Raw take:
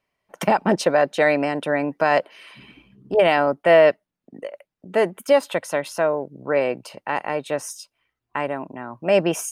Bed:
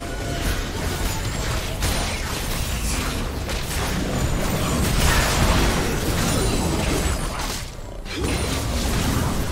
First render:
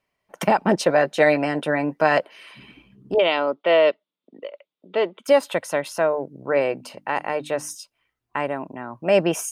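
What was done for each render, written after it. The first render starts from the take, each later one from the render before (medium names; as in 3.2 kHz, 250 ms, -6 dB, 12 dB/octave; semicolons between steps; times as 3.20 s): 0.87–2.18 s: doubling 13 ms -8 dB; 3.18–5.25 s: cabinet simulation 330–4300 Hz, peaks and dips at 750 Hz -8 dB, 1.7 kHz -10 dB, 3.5 kHz +10 dB; 5.99–7.75 s: hum notches 50/100/150/200/250/300 Hz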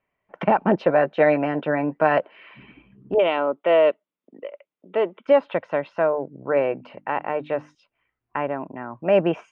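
low-pass 2.6 kHz 24 dB/octave; dynamic bell 2 kHz, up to -5 dB, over -39 dBFS, Q 2.8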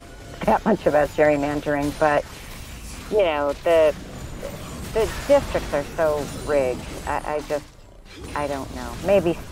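add bed -12.5 dB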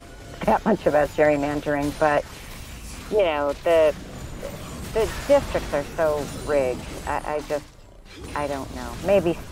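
trim -1 dB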